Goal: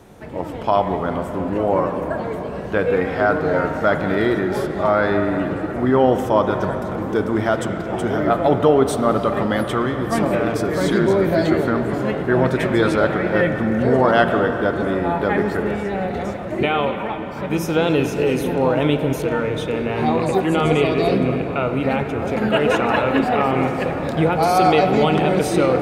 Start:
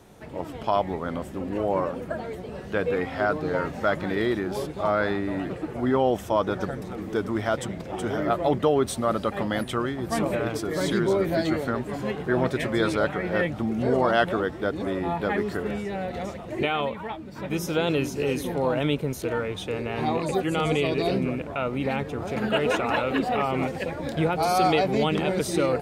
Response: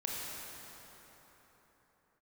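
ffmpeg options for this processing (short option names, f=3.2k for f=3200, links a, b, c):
-filter_complex "[0:a]asplit=2[a][b];[1:a]atrim=start_sample=2205,lowpass=3k[c];[b][c]afir=irnorm=-1:irlink=0,volume=-5dB[d];[a][d]amix=inputs=2:normalize=0,volume=3dB"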